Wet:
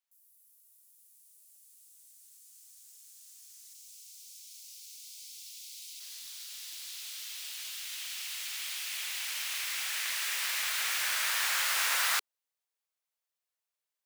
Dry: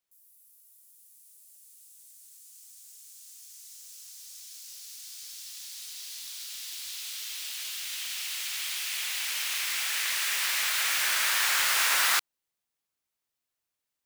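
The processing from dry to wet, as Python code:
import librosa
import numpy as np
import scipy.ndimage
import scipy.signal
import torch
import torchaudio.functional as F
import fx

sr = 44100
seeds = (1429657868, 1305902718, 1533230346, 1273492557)

y = fx.steep_highpass(x, sr, hz=fx.steps((0.0, 660.0), (3.73, 2100.0), (5.99, 420.0)), slope=72)
y = y * librosa.db_to_amplitude(-4.5)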